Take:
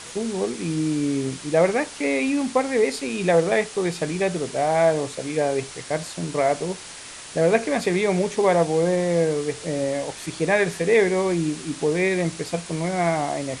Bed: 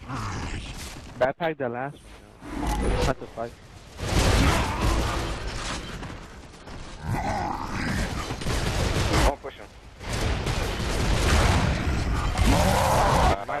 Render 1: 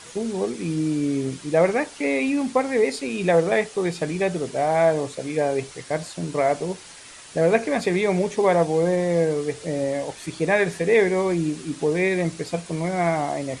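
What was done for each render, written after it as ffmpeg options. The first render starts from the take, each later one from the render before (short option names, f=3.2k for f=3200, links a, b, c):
-af "afftdn=nr=6:nf=-39"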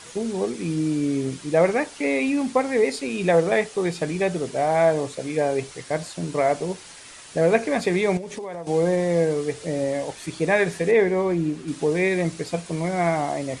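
-filter_complex "[0:a]asettb=1/sr,asplit=3[a][b][c];[a]atrim=end=8.174[d];[b]atrim=start=8.17:end=8.67,asetpts=PTS-STARTPTS,afade=t=in:d=0.004:c=qsin,afade=t=out:st=0.496:d=0.004:c=qsin,acompressor=threshold=-29dB:ratio=12:attack=3.2:release=140:knee=1:detection=peak[e];[c]atrim=start=8.666[f];[d][e]acrossfade=d=0.004:c1=hsin:c2=qsin[g];[g][f]acrossfade=d=0.004:c1=qsin:c2=hsin,asettb=1/sr,asplit=3[h][i][j];[h]atrim=end=10.914[k];[i]atrim=start=10.91:end=11.68,asetpts=PTS-STARTPTS,afade=t=in:d=0.004:c=qsin,afade=t=out:st=0.766:d=0.004:c=qsin,highshelf=f=3.3k:g=-10.5[l];[j]atrim=start=11.676[m];[k][l]acrossfade=d=0.004:c1=hsin:c2=qsin[n];[n][m]acrossfade=d=0.004:c1=qsin:c2=hsin"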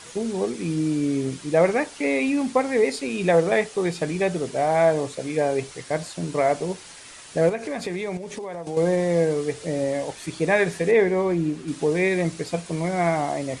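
-filter_complex "[0:a]asettb=1/sr,asplit=3[a][b][c];[a]atrim=end=7.494[d];[b]atrim=start=7.49:end=8.77,asetpts=PTS-STARTPTS,afade=t=in:d=0.004:c=qsin,afade=t=out:st=1.276:d=0.004:c=qsin,acompressor=threshold=-27dB:ratio=3:attack=3.2:release=140:knee=1:detection=peak[e];[c]atrim=start=8.766[f];[d][e]acrossfade=d=0.004:c1=hsin:c2=qsin[g];[g][f]acrossfade=d=0.004:c1=qsin:c2=hsin"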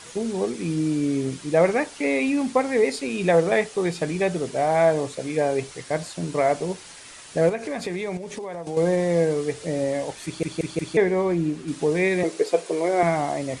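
-filter_complex "[0:a]asettb=1/sr,asplit=3[a][b][c];[a]atrim=end=12.234[d];[b]atrim=start=12.23:end=13.03,asetpts=PTS-STARTPTS,afade=t=in:d=0.004:c=qsin,afade=t=out:st=0.796:d=0.004:c=qsin,highpass=f=420:t=q:w=3.5[e];[c]atrim=start=13.026[f];[d][e]acrossfade=d=0.004:c1=hsin:c2=qsin[g];[g][f]acrossfade=d=0.004:c1=qsin:c2=hsin,asplit=5[h][i][j][k][l];[h]atrim=end=10.432[m];[i]atrim=start=10.248:end=10.432[n];[j]atrim=start=10.248:end=10.432[o];[k]atrim=start=10.248:end=10.432[p];[l]atrim=start=10.968[q];[m][n]acrossfade=d=0.004:c1=hsin:c2=hsin[r];[r][o]acrossfade=d=0.004:c1=hsin:c2=hsin[s];[s][p]acrossfade=d=0.004:c1=hsin:c2=hsin[t];[t][q]acrossfade=d=0.004:c1=hsin:c2=hsin"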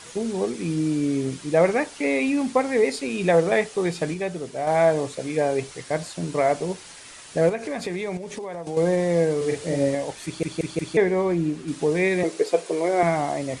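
-filter_complex "[0:a]asettb=1/sr,asplit=3[a][b][c];[a]atrim=end=9.374[d];[b]atrim=start=9.37:end=9.95,asetpts=PTS-STARTPTS,afade=t=in:d=0.004:c=qsin,afade=t=out:st=0.576:d=0.004:c=qsin,asplit=2[e][f];[f]adelay=43,volume=-2dB[g];[e][g]amix=inputs=2:normalize=0,atrim=end_sample=25578[h];[c]atrim=start=9.946[i];[d][h]acrossfade=d=0.004:c1=hsin:c2=qsin[j];[j][i]acrossfade=d=0.004:c1=qsin:c2=hsin,asplit=3[k][l][m];[k]atrim=end=4.142[n];[l]atrim=start=4.138:end=4.672,asetpts=PTS-STARTPTS,volume=-5dB[o];[m]atrim=start=4.668[p];[n][o]acrossfade=d=0.004:c1=hsin:c2=hsin[q];[q][p]acrossfade=d=0.004:c1=hsin:c2=hsin"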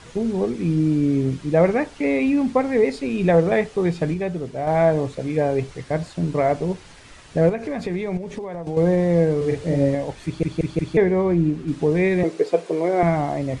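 -af "aemphasis=mode=reproduction:type=bsi"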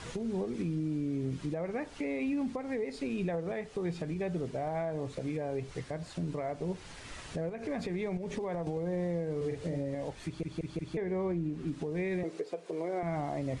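-af "acompressor=threshold=-24dB:ratio=6,alimiter=level_in=2dB:limit=-24dB:level=0:latency=1:release=489,volume=-2dB"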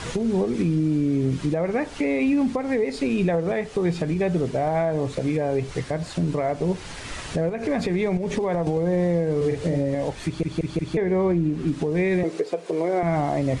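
-af "volume=11.5dB"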